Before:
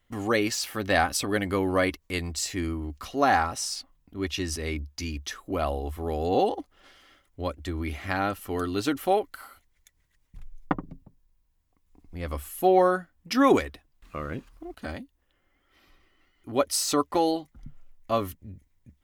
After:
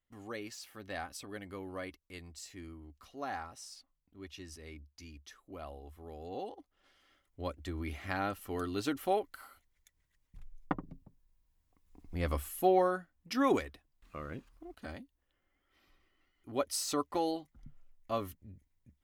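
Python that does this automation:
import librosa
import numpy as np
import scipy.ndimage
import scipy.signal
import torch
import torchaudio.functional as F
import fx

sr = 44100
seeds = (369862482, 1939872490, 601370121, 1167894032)

y = fx.gain(x, sr, db=fx.line((6.54, -18.0), (7.47, -7.5), (10.73, -7.5), (12.21, 0.5), (12.89, -9.0)))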